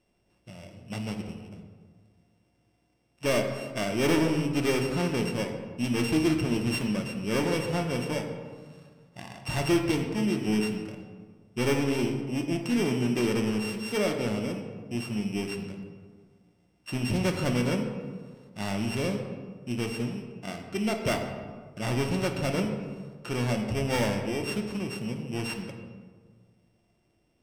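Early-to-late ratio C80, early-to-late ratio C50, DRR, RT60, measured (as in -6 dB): 7.0 dB, 6.0 dB, 3.0 dB, 1.6 s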